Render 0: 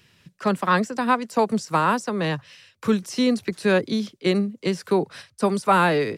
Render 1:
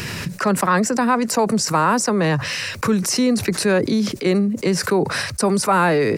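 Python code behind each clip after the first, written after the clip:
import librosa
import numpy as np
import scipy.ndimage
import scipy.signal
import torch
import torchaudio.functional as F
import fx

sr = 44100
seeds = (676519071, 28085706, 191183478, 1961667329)

y = fx.peak_eq(x, sr, hz=3300.0, db=-9.0, octaves=0.48)
y = fx.env_flatten(y, sr, amount_pct=70)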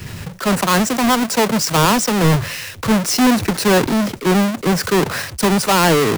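y = fx.halfwave_hold(x, sr)
y = fx.band_widen(y, sr, depth_pct=70)
y = F.gain(torch.from_numpy(y), -1.0).numpy()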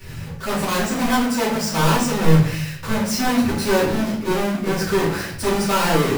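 y = fx.room_shoebox(x, sr, seeds[0], volume_m3=89.0, walls='mixed', distance_m=2.5)
y = F.gain(torch.from_numpy(y), -15.0).numpy()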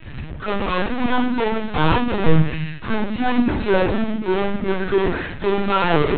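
y = fx.lpc_vocoder(x, sr, seeds[1], excitation='pitch_kept', order=16)
y = F.gain(torch.from_numpy(y), 1.0).numpy()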